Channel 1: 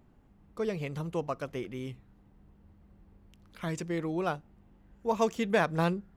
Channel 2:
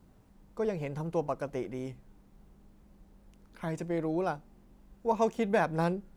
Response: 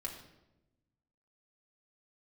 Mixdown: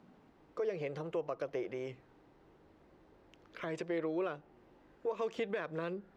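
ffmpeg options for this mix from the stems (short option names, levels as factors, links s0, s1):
-filter_complex "[0:a]volume=1.26[s0];[1:a]acrossover=split=120|440|920[s1][s2][s3][s4];[s1]acompressor=threshold=0.00112:ratio=4[s5];[s2]acompressor=threshold=0.00447:ratio=4[s6];[s3]acompressor=threshold=0.00891:ratio=4[s7];[s4]acompressor=threshold=0.002:ratio=4[s8];[s5][s6][s7][s8]amix=inputs=4:normalize=0,volume=-1,volume=1.12,asplit=2[s9][s10];[s10]apad=whole_len=271841[s11];[s0][s11]sidechaincompress=threshold=0.00708:ratio=6:attack=7.9:release=152[s12];[s12][s9]amix=inputs=2:normalize=0,acrossover=split=170 5100:gain=0.1 1 0.112[s13][s14][s15];[s13][s14][s15]amix=inputs=3:normalize=0,alimiter=level_in=1.26:limit=0.0631:level=0:latency=1:release=207,volume=0.794"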